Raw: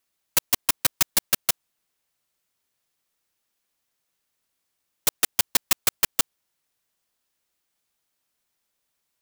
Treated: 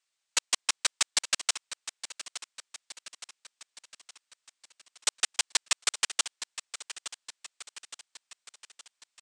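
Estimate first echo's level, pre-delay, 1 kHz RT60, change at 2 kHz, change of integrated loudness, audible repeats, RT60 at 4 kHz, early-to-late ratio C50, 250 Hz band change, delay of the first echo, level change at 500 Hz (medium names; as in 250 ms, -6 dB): -13.0 dB, no reverb, no reverb, -1.5 dB, -7.0 dB, 4, no reverb, no reverb, -14.5 dB, 867 ms, -9.0 dB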